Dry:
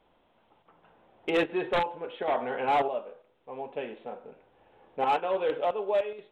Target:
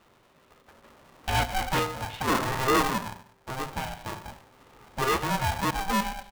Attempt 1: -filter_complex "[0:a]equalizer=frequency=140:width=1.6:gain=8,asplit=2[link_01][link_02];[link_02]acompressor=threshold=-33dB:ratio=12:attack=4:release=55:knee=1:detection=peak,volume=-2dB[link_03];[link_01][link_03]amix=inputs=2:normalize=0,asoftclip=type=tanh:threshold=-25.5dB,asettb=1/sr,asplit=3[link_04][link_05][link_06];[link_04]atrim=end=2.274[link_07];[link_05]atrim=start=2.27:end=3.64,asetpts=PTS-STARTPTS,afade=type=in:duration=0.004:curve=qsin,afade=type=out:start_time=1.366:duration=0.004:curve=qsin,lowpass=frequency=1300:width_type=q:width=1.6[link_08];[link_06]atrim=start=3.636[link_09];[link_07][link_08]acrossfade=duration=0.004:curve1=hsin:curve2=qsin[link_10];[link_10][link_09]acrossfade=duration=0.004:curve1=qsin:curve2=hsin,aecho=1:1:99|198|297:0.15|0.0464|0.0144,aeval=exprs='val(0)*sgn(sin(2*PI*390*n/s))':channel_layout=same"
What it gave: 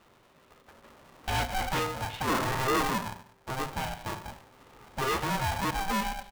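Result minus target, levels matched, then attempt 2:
soft clipping: distortion +14 dB; downward compressor: peak gain reduction −6 dB
-filter_complex "[0:a]equalizer=frequency=140:width=1.6:gain=8,asplit=2[link_01][link_02];[link_02]acompressor=threshold=-39.5dB:ratio=12:attack=4:release=55:knee=1:detection=peak,volume=-2dB[link_03];[link_01][link_03]amix=inputs=2:normalize=0,asoftclip=type=tanh:threshold=-16.5dB,asettb=1/sr,asplit=3[link_04][link_05][link_06];[link_04]atrim=end=2.274[link_07];[link_05]atrim=start=2.27:end=3.64,asetpts=PTS-STARTPTS,afade=type=in:duration=0.004:curve=qsin,afade=type=out:start_time=1.366:duration=0.004:curve=qsin,lowpass=frequency=1300:width_type=q:width=1.6[link_08];[link_06]atrim=start=3.636[link_09];[link_07][link_08]acrossfade=duration=0.004:curve1=hsin:curve2=qsin[link_10];[link_10][link_09]acrossfade=duration=0.004:curve1=qsin:curve2=hsin,aecho=1:1:99|198|297:0.15|0.0464|0.0144,aeval=exprs='val(0)*sgn(sin(2*PI*390*n/s))':channel_layout=same"

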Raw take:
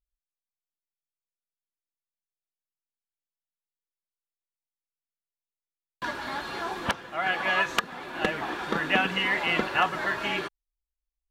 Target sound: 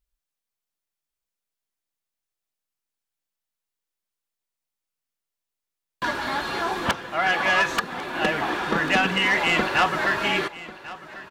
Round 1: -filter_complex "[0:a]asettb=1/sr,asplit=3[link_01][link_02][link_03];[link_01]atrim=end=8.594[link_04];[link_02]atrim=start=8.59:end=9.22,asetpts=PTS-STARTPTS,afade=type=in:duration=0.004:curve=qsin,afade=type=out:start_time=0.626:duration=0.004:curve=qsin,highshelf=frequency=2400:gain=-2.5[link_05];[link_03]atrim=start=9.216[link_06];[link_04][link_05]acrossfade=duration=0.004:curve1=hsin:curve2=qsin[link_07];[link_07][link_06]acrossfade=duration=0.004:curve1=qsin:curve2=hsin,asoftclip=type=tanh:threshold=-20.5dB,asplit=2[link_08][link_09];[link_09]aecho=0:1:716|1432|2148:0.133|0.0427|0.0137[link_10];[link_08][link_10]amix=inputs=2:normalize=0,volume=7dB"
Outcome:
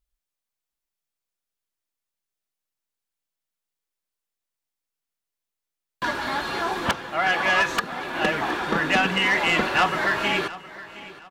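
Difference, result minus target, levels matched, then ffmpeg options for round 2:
echo 378 ms early
-filter_complex "[0:a]asettb=1/sr,asplit=3[link_01][link_02][link_03];[link_01]atrim=end=8.594[link_04];[link_02]atrim=start=8.59:end=9.22,asetpts=PTS-STARTPTS,afade=type=in:duration=0.004:curve=qsin,afade=type=out:start_time=0.626:duration=0.004:curve=qsin,highshelf=frequency=2400:gain=-2.5[link_05];[link_03]atrim=start=9.216[link_06];[link_04][link_05]acrossfade=duration=0.004:curve1=hsin:curve2=qsin[link_07];[link_07][link_06]acrossfade=duration=0.004:curve1=qsin:curve2=hsin,asoftclip=type=tanh:threshold=-20.5dB,asplit=2[link_08][link_09];[link_09]aecho=0:1:1094|2188|3282:0.133|0.0427|0.0137[link_10];[link_08][link_10]amix=inputs=2:normalize=0,volume=7dB"

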